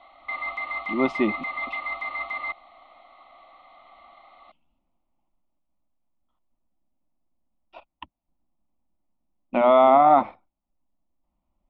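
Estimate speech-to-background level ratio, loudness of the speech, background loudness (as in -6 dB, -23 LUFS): 11.0 dB, -19.5 LUFS, -30.5 LUFS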